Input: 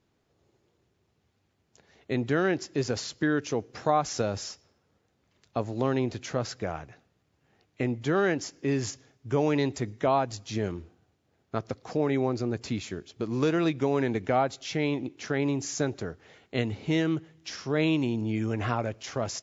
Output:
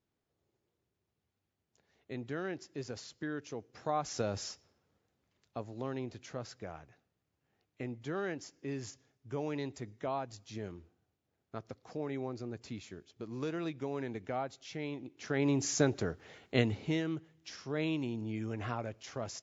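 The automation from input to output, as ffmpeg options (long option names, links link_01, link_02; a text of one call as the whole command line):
ffmpeg -i in.wav -af "volume=8dB,afade=type=in:start_time=3.72:duration=0.75:silence=0.354813,afade=type=out:start_time=4.47:duration=1.19:silence=0.398107,afade=type=in:start_time=15.11:duration=0.54:silence=0.251189,afade=type=out:start_time=16.58:duration=0.43:silence=0.354813" out.wav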